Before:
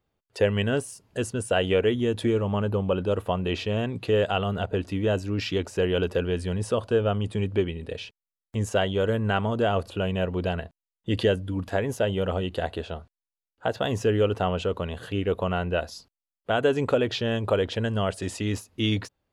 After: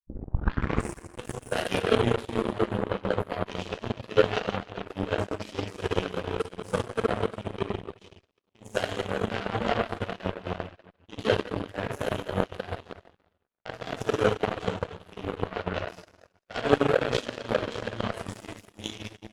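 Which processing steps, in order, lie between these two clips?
turntable start at the beginning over 0.93 s
dense smooth reverb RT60 2.9 s, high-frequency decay 0.8×, DRR −8.5 dB
reverb reduction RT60 0.73 s
harmonic generator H 3 −12 dB, 7 −29 dB, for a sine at −3 dBFS
level −1 dB

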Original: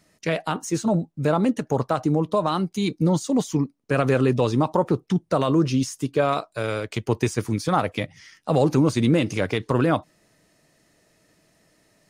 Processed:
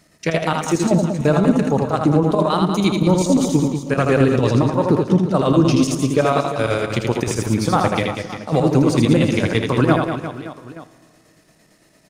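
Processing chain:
brickwall limiter −12 dBFS, peak gain reduction 4.5 dB
square-wave tremolo 8.8 Hz, depth 65%, duty 65%
reverse bouncing-ball delay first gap 80 ms, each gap 1.4×, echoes 5
four-comb reverb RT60 2.1 s, combs from 33 ms, DRR 15.5 dB
level +6 dB

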